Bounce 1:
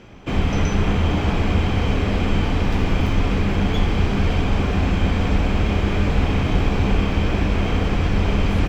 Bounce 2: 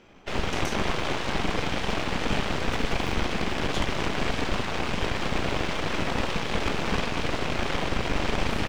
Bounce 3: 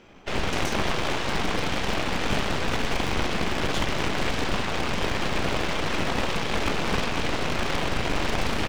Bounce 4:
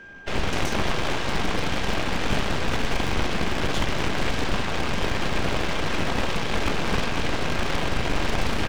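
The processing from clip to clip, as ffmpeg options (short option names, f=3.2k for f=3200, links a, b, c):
-af "equalizer=f=82:w=0.61:g=-11,aeval=exprs='0.335*(cos(1*acos(clip(val(0)/0.335,-1,1)))-cos(1*PI/2))+0.0944*(cos(7*acos(clip(val(0)/0.335,-1,1)))-cos(7*PI/2))+0.0944*(cos(8*acos(clip(val(0)/0.335,-1,1)))-cos(8*PI/2))':c=same,volume=-7dB"
-af "aeval=exprs='0.119*(abs(mod(val(0)/0.119+3,4)-2)-1)':c=same,volume=2.5dB"
-af "lowshelf=f=140:g=3.5,aeval=exprs='val(0)+0.00794*sin(2*PI*1600*n/s)':c=same"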